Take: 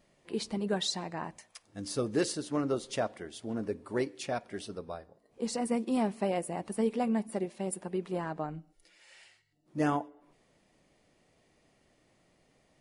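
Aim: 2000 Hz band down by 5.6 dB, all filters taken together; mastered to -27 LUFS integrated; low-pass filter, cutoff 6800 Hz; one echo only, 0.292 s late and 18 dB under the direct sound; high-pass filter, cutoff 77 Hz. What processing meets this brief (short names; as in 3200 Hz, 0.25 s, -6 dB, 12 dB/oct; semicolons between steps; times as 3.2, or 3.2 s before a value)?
HPF 77 Hz; LPF 6800 Hz; bell 2000 Hz -7.5 dB; echo 0.292 s -18 dB; gain +7.5 dB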